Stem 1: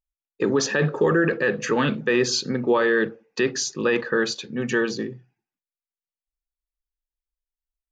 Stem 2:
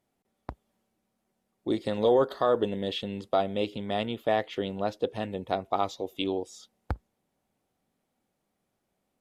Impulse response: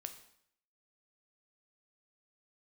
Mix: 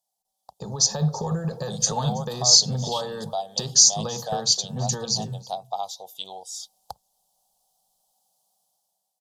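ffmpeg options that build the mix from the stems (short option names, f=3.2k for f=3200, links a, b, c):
-filter_complex "[0:a]equalizer=f=2.9k:t=o:w=0.46:g=-14,acompressor=threshold=-22dB:ratio=6,agate=range=-13dB:threshold=-42dB:ratio=16:detection=peak,adelay=200,volume=-5.5dB,asplit=2[a][b];[b]volume=-22.5dB[c];[1:a]highpass=410,acompressor=threshold=-46dB:ratio=1.5,volume=-4dB[d];[c]aecho=0:1:328:1[e];[a][d][e]amix=inputs=3:normalize=0,firequalizer=gain_entry='entry(110,0);entry(180,-4);entry(300,-28);entry(440,-14);entry(770,3);entry(1400,-19);entry(2100,-28);entry(3100,-5);entry(4700,1);entry(7100,-1)':delay=0.05:min_phase=1,dynaudnorm=f=190:g=7:m=11.5dB,bass=f=250:g=4,treble=f=4k:g=11"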